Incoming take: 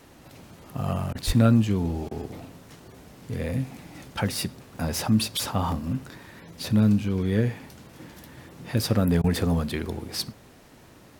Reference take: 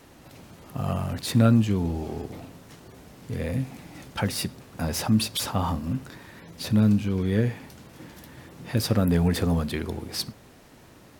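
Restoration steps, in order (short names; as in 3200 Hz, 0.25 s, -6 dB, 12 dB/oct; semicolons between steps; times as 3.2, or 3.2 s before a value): 1.26–1.38 HPF 140 Hz 24 dB/oct; interpolate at 2.7/4.76/5.72/9.86, 2.3 ms; interpolate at 1.13/2.09/9.22, 19 ms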